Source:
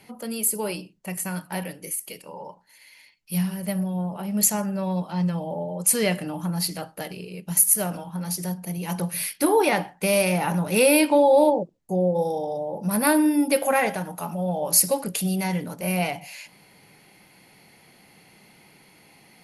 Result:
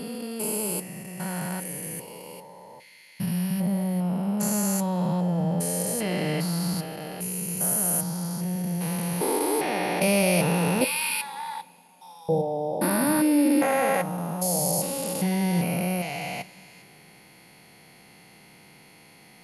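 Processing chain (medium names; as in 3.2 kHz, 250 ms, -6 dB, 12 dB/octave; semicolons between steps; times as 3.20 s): spectrogram pixelated in time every 400 ms; in parallel at -7.5 dB: overload inside the chain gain 17 dB; 10.84–12.29 s: on the sum: elliptic high-pass 960 Hz, stop band 40 dB; two-slope reverb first 0.21 s, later 3.4 s, from -21 dB, DRR 13 dB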